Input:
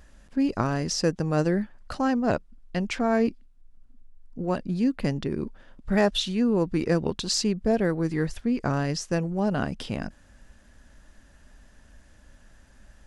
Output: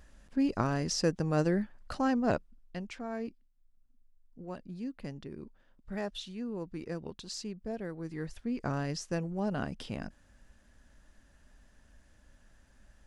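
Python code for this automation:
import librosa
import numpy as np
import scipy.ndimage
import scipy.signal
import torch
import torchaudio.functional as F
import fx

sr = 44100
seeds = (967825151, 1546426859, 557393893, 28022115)

y = fx.gain(x, sr, db=fx.line((2.33, -4.5), (2.98, -15.0), (7.91, -15.0), (8.66, -7.5)))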